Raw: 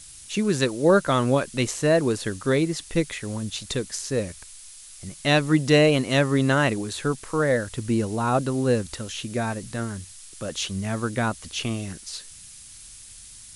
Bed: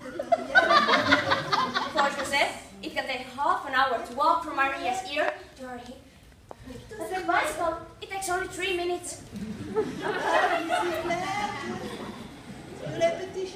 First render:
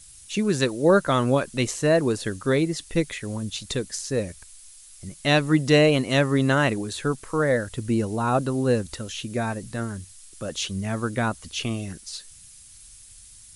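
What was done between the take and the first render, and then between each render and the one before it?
noise reduction 6 dB, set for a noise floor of -45 dBFS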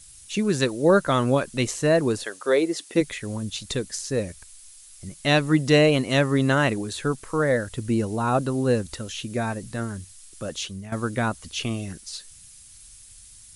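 2.23–3.00 s: resonant high-pass 730 Hz -> 250 Hz, resonance Q 1.7; 10.47–10.92 s: fade out, to -13 dB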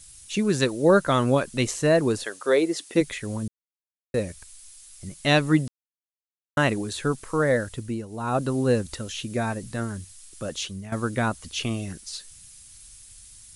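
3.48–4.14 s: mute; 5.68–6.57 s: mute; 7.63–8.49 s: dip -11.5 dB, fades 0.41 s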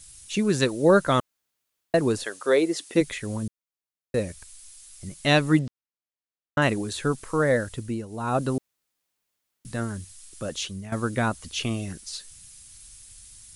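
1.20–1.94 s: room tone; 5.59–6.62 s: distance through air 120 m; 8.58–9.65 s: room tone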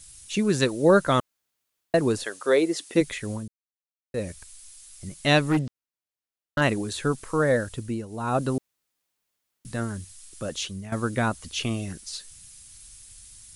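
3.31–4.28 s: dip -16 dB, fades 0.22 s; 5.44–6.61 s: overload inside the chain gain 17.5 dB; 7.33–7.82 s: band-stop 2 kHz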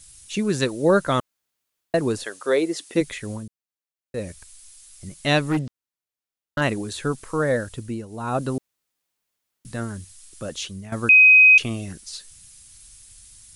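11.09–11.58 s: bleep 2.52 kHz -8 dBFS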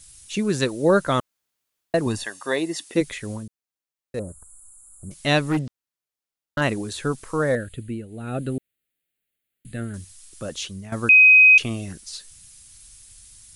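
2.06–2.83 s: comb 1.1 ms, depth 62%; 4.19–5.11 s: Chebyshev band-stop 1.4–7.2 kHz, order 5; 7.55–9.94 s: static phaser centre 2.4 kHz, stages 4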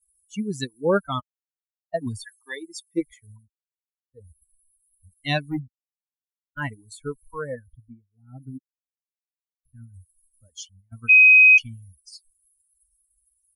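expander on every frequency bin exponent 3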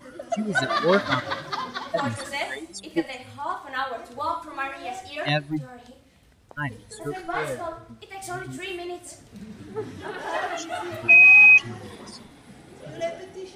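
add bed -5 dB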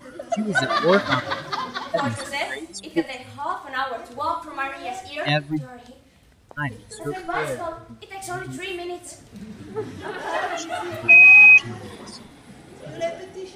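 trim +2.5 dB

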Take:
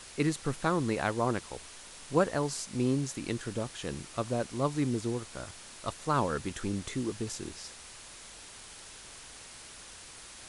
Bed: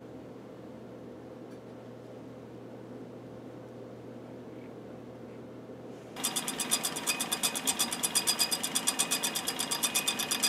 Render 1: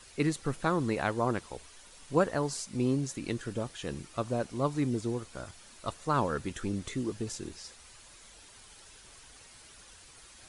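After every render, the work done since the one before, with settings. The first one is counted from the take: noise reduction 8 dB, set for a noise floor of -49 dBFS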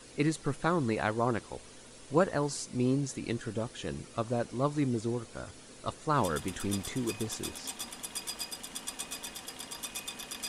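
add bed -10.5 dB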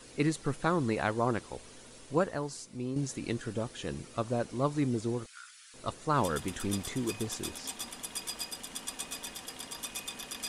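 1.97–2.96 s: fade out quadratic, to -8 dB; 5.26–5.74 s: steep high-pass 1.3 kHz 48 dB/octave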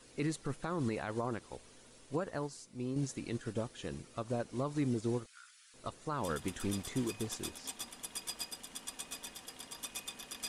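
peak limiter -24.5 dBFS, peak gain reduction 10 dB; upward expansion 1.5:1, over -44 dBFS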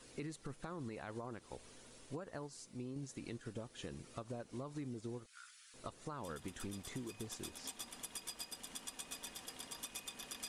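compression 5:1, threshold -43 dBFS, peak gain reduction 12.5 dB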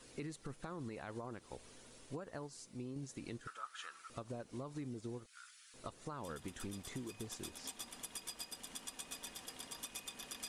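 3.47–4.10 s: resonant high-pass 1.3 kHz, resonance Q 12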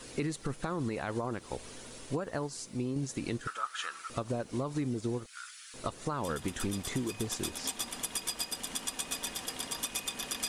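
trim +11.5 dB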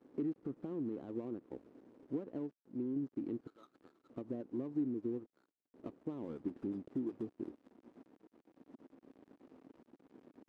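dead-time distortion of 0.25 ms; band-pass filter 300 Hz, Q 2.7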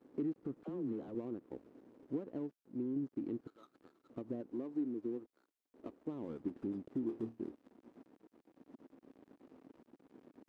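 0.63–1.15 s: phase dispersion lows, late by 51 ms, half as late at 430 Hz; 4.51–6.08 s: peaking EQ 140 Hz -11.5 dB; 7.01–7.47 s: flutter echo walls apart 4.5 m, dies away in 0.23 s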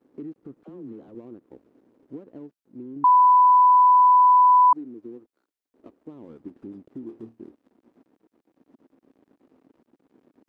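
3.04–4.73 s: bleep 996 Hz -11.5 dBFS

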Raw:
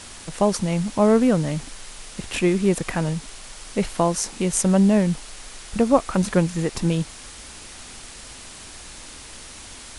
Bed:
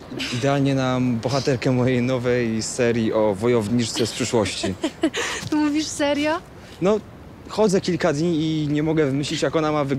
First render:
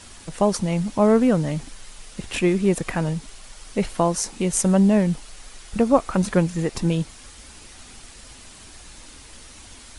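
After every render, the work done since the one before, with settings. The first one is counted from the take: noise reduction 6 dB, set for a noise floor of -41 dBFS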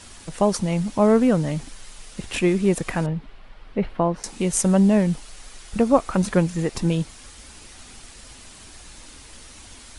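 3.06–4.24 s: distance through air 400 m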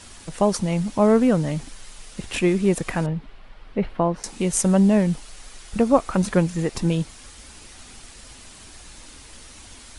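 no audible change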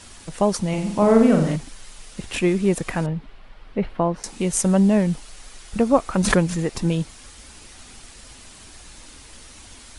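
0.69–1.56 s: flutter echo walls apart 7.6 m, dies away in 0.61 s; 6.19–6.60 s: swell ahead of each attack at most 57 dB/s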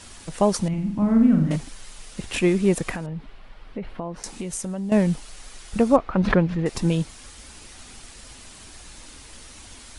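0.68–1.51 s: FFT filter 280 Hz 0 dB, 430 Hz -17 dB, 1.6 kHz -9 dB, 7.4 kHz -19 dB; 2.95–4.92 s: compression, threshold -27 dBFS; 5.96–6.66 s: distance through air 330 m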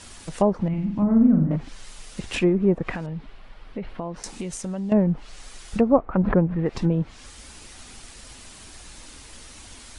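low-pass that closes with the level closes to 980 Hz, closed at -16.5 dBFS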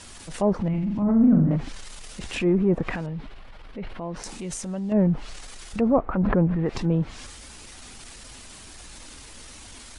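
transient shaper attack -6 dB, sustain +5 dB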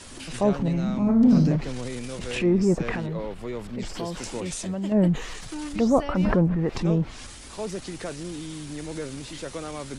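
add bed -14.5 dB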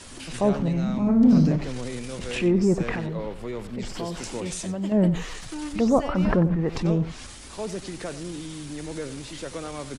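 delay 93 ms -14 dB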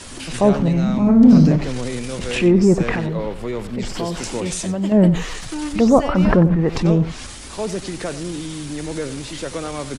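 trim +7 dB; peak limiter -2 dBFS, peak gain reduction 1 dB

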